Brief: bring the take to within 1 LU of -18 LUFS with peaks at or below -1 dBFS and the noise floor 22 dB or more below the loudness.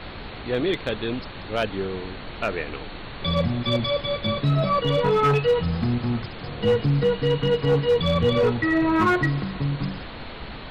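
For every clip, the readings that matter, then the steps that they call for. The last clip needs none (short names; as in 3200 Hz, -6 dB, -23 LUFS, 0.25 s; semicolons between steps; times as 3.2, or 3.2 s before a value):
clipped 1.2%; flat tops at -14.0 dBFS; noise floor -37 dBFS; noise floor target -46 dBFS; loudness -23.5 LUFS; peak -14.0 dBFS; loudness target -18.0 LUFS
-> clip repair -14 dBFS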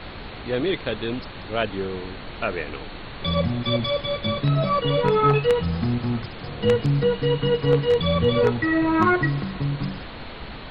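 clipped 0.0%; noise floor -37 dBFS; noise floor target -45 dBFS
-> noise print and reduce 8 dB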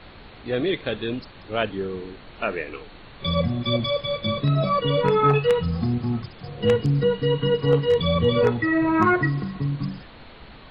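noise floor -45 dBFS; loudness -23.0 LUFS; peak -5.0 dBFS; loudness target -18.0 LUFS
-> gain +5 dB; limiter -1 dBFS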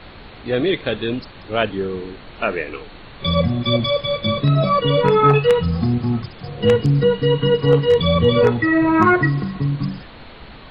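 loudness -18.0 LUFS; peak -1.0 dBFS; noise floor -40 dBFS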